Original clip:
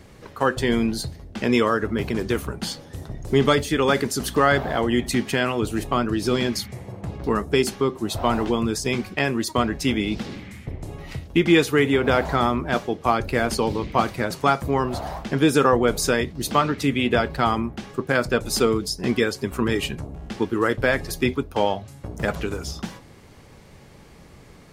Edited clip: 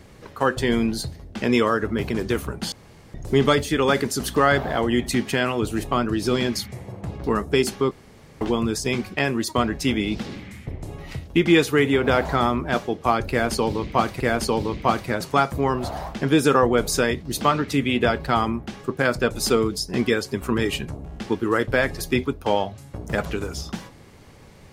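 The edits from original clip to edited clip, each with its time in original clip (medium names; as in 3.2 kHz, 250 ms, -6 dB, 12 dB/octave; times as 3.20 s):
2.72–3.14 s: room tone
7.91–8.41 s: room tone
13.30–14.20 s: loop, 2 plays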